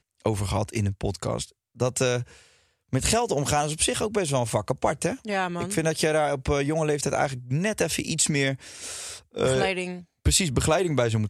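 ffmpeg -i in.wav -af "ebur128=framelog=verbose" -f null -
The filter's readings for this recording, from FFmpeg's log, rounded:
Integrated loudness:
  I:         -25.5 LUFS
  Threshold: -35.7 LUFS
Loudness range:
  LRA:         2.1 LU
  Threshold: -45.7 LUFS
  LRA low:   -26.9 LUFS
  LRA high:  -24.8 LUFS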